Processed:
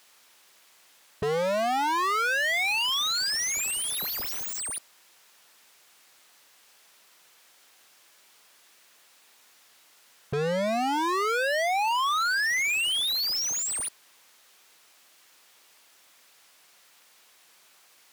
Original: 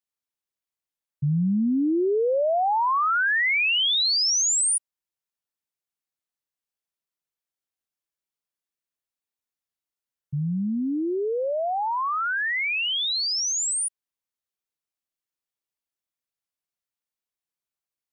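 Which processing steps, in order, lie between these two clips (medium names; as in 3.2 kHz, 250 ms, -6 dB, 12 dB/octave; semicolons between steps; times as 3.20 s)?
sine folder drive 9 dB, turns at -18.5 dBFS; overdrive pedal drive 36 dB, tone 5.2 kHz, clips at -17 dBFS; trim -5.5 dB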